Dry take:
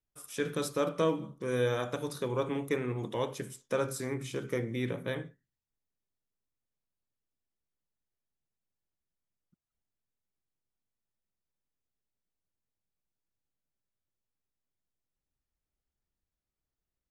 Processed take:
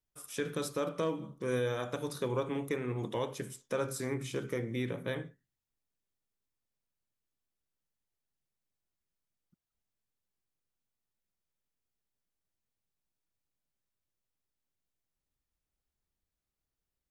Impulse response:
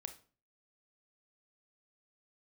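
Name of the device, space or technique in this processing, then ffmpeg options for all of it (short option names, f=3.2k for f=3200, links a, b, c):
clipper into limiter: -af "asoftclip=type=hard:threshold=-17.5dB,alimiter=limit=-22.5dB:level=0:latency=1:release=292"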